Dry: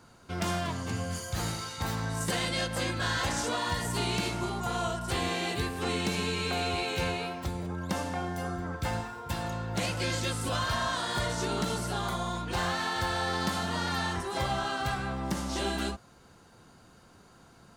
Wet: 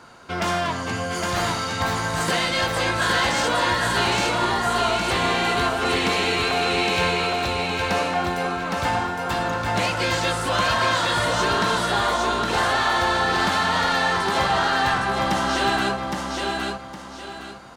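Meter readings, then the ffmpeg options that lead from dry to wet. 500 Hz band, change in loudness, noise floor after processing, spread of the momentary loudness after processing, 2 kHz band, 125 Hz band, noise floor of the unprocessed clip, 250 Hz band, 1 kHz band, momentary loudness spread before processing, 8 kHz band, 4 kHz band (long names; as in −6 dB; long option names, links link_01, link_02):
+10.0 dB, +10.0 dB, −37 dBFS, 6 LU, +12.0 dB, +3.5 dB, −57 dBFS, +6.5 dB, +12.0 dB, 5 LU, +6.5 dB, +10.0 dB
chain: -filter_complex "[0:a]asplit=2[link_01][link_02];[link_02]highpass=frequency=720:poles=1,volume=13dB,asoftclip=type=tanh:threshold=-18.5dB[link_03];[link_01][link_03]amix=inputs=2:normalize=0,lowpass=frequency=2800:poles=1,volume=-6dB,aecho=1:1:813|1626|2439|3252:0.708|0.219|0.068|0.0211,volume=6dB"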